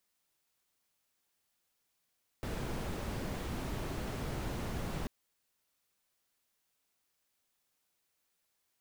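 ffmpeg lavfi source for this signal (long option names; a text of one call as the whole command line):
ffmpeg -f lavfi -i "anoisesrc=color=brown:amplitude=0.0624:duration=2.64:sample_rate=44100:seed=1" out.wav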